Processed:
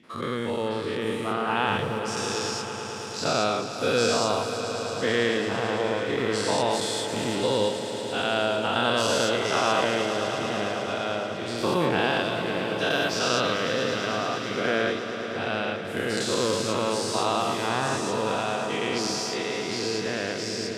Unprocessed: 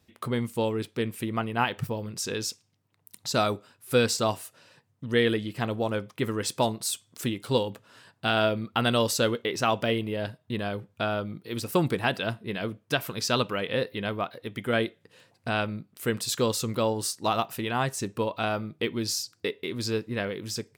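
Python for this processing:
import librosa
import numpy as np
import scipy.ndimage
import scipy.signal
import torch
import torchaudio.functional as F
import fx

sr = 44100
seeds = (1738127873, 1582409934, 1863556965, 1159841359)

y = fx.spec_dilate(x, sr, span_ms=240)
y = fx.bandpass_edges(y, sr, low_hz=130.0, high_hz=6500.0)
y = fx.echo_swell(y, sr, ms=110, loudest=5, wet_db=-14.0)
y = F.gain(torch.from_numpy(y), -5.5).numpy()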